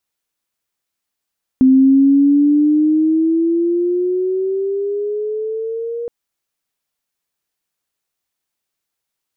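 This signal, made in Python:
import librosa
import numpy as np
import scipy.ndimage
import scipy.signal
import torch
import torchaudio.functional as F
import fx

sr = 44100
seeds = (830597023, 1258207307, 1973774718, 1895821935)

y = fx.riser_tone(sr, length_s=4.47, level_db=-6, wave='sine', hz=259.0, rise_st=10.5, swell_db=-15.0)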